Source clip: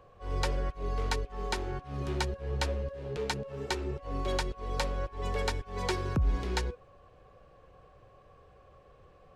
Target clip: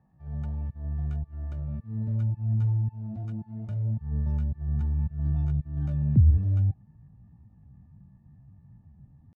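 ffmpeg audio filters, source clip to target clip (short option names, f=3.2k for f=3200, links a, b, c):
-af "asubboost=boost=5:cutoff=150,asetrate=70004,aresample=44100,atempo=0.629961,bandpass=f=140:t=q:w=1.2:csg=0"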